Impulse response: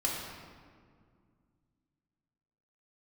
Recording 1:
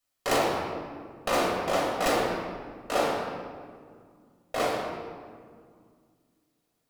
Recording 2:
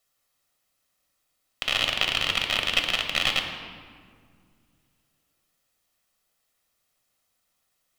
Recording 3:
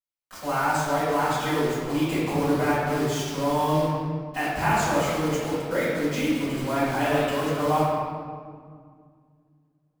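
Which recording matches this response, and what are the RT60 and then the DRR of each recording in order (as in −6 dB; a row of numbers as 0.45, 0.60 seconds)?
1; 2.0, 2.1, 2.0 seconds; −3.5, 3.5, −13.5 decibels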